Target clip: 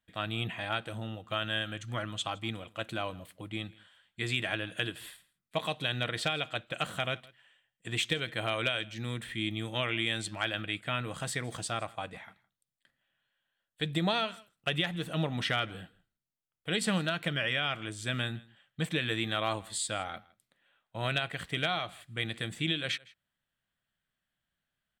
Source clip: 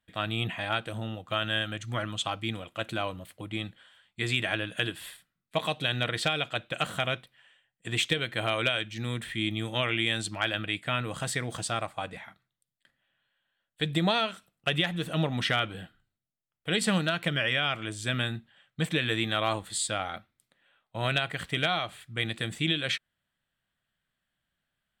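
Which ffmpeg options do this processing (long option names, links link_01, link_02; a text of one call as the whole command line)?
ffmpeg -i in.wav -af "aecho=1:1:162:0.0668,volume=-3.5dB" out.wav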